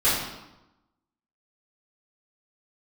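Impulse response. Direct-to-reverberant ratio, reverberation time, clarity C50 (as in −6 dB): −13.0 dB, 0.95 s, 1.0 dB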